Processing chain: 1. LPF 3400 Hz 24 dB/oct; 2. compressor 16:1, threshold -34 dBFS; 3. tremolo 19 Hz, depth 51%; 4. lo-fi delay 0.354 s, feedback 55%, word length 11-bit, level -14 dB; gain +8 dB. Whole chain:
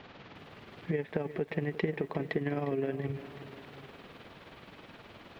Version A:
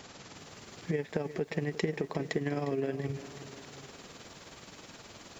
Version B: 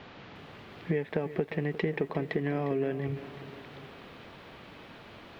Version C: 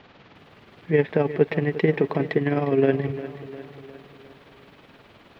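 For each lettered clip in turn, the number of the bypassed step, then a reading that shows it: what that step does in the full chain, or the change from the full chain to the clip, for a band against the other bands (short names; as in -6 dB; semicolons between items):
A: 1, 4 kHz band +4.5 dB; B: 3, loudness change +2.0 LU; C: 2, mean gain reduction 4.5 dB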